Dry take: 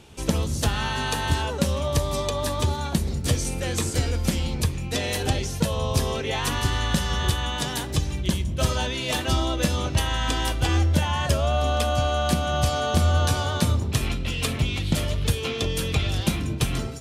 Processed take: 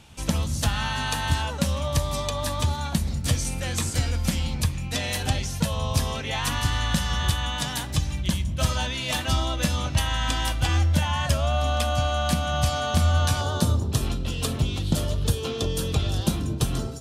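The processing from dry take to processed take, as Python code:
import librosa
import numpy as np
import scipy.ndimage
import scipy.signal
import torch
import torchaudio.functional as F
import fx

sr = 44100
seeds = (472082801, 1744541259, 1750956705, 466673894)

y = fx.peak_eq(x, sr, hz=fx.steps((0.0, 400.0), (13.41, 2200.0)), db=-12.0, octaves=0.65)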